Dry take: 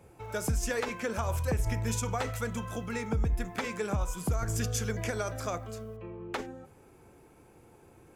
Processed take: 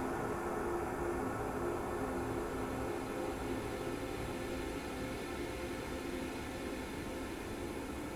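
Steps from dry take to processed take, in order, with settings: flange 1.1 Hz, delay 2.8 ms, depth 2.7 ms, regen -23%; echo whose repeats swap between lows and highs 223 ms, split 1.5 kHz, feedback 54%, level -3 dB; Paulstretch 23×, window 0.50 s, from 7.01 s; trim +15.5 dB

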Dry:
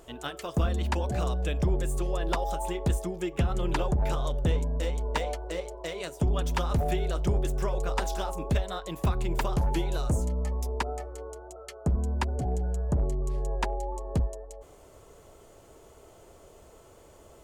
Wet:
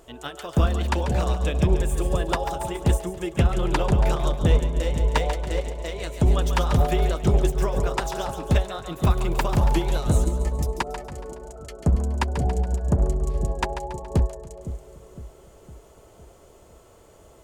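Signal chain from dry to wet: two-band feedback delay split 530 Hz, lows 509 ms, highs 140 ms, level -8 dB; upward expansion 1.5:1, over -34 dBFS; trim +7.5 dB

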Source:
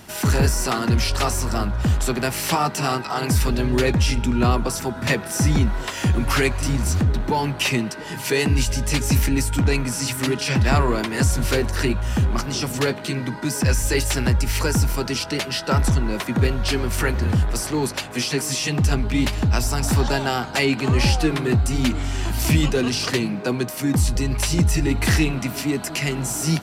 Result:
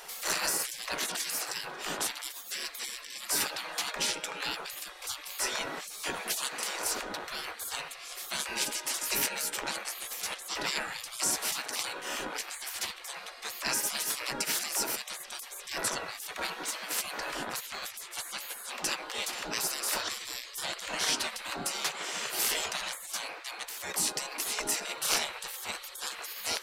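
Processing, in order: hum 60 Hz, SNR 12 dB; spectral gate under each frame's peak -25 dB weak

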